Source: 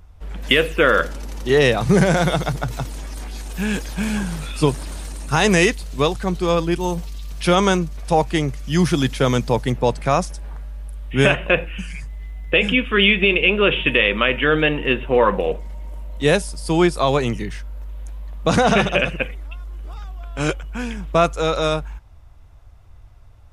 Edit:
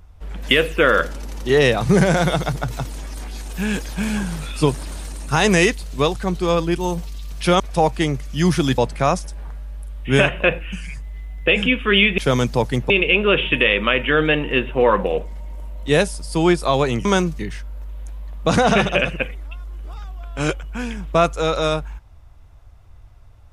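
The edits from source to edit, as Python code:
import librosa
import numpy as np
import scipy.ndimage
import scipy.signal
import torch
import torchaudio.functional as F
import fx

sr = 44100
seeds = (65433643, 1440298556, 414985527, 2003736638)

y = fx.edit(x, sr, fx.move(start_s=7.6, length_s=0.34, to_s=17.39),
    fx.move(start_s=9.12, length_s=0.72, to_s=13.24), tone=tone)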